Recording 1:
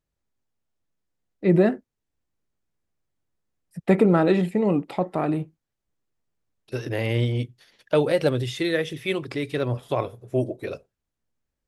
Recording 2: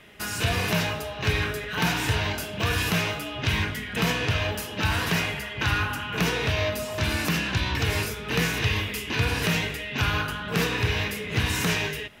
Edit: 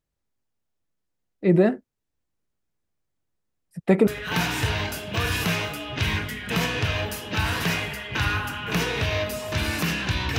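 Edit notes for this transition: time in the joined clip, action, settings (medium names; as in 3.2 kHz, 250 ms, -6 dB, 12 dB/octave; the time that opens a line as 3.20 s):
recording 1
4.07 s: go over to recording 2 from 1.53 s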